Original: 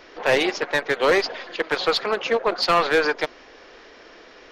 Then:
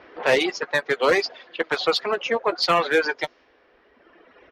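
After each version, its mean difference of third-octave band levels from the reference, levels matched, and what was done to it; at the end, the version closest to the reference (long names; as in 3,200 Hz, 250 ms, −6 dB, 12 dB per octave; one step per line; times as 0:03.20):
4.5 dB: high-pass filter 44 Hz
low-pass that shuts in the quiet parts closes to 2,100 Hz, open at −19 dBFS
reverb reduction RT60 2 s
double-tracking delay 12 ms −11 dB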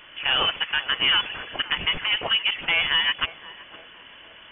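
9.5 dB: voice inversion scrambler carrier 3,400 Hz
on a send: feedback echo with a band-pass in the loop 513 ms, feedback 60%, band-pass 450 Hz, level −14 dB
on the sum: brickwall limiter −12 dBFS, peak gain reduction 5.5 dB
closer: first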